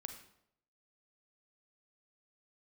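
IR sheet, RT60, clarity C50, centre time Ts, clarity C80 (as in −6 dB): 0.75 s, 8.0 dB, 17 ms, 10.5 dB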